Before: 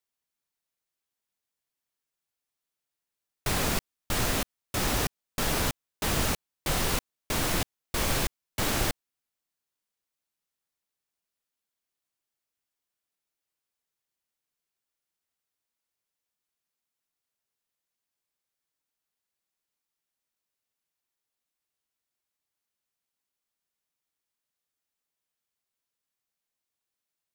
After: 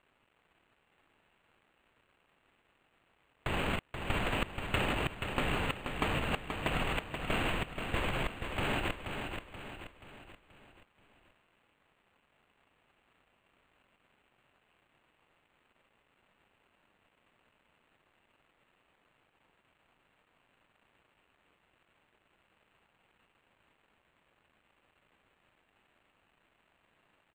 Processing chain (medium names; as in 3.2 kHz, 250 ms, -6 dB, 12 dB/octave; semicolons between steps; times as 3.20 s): companding laws mixed up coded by mu; peaking EQ 2.8 kHz +11 dB 0.45 oct; compressor with a negative ratio -29 dBFS, ratio -0.5; feedback delay 480 ms, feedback 46%, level -6.5 dB; decimation joined by straight lines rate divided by 8×